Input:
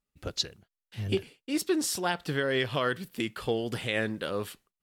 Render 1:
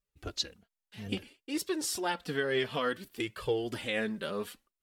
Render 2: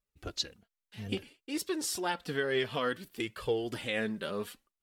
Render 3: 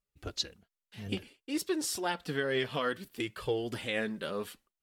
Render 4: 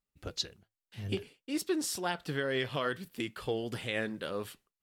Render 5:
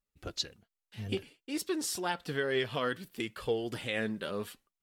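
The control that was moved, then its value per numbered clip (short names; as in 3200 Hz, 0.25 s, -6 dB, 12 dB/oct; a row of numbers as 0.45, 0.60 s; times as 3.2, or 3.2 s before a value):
flange, regen: 0, +21, -27, -85, +54%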